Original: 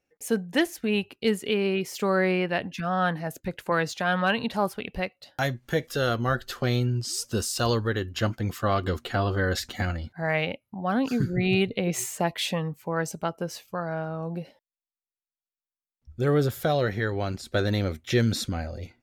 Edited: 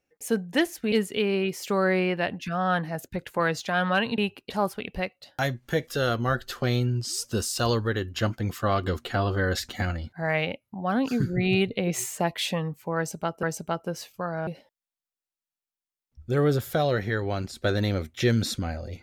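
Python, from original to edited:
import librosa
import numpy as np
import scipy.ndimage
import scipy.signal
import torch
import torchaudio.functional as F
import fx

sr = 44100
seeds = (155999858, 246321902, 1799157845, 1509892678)

y = fx.edit(x, sr, fx.move(start_s=0.92, length_s=0.32, to_s=4.5),
    fx.repeat(start_s=12.97, length_s=0.46, count=2),
    fx.cut(start_s=14.01, length_s=0.36), tone=tone)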